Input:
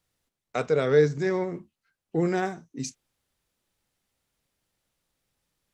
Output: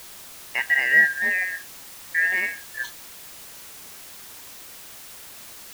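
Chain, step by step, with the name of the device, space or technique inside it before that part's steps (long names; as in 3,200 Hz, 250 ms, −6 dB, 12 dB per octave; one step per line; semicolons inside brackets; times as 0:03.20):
split-band scrambled radio (band-splitting scrambler in four parts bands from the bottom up 2143; band-pass filter 330–3,100 Hz; white noise bed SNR 15 dB)
level +3 dB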